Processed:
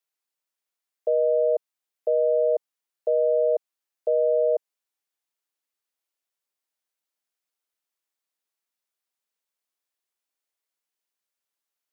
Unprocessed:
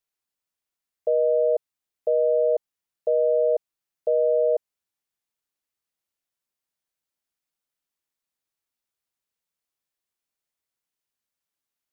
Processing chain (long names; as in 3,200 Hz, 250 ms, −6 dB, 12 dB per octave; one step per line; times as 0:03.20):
high-pass filter 330 Hz